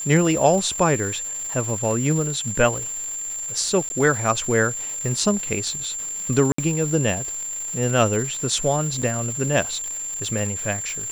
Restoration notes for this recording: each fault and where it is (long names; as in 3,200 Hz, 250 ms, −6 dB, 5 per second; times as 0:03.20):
surface crackle 490 per second −30 dBFS
whistle 7,300 Hz −27 dBFS
0:03.89–0:03.90: drop-out 11 ms
0:06.52–0:06.58: drop-out 64 ms
0:09.02: drop-out 4.8 ms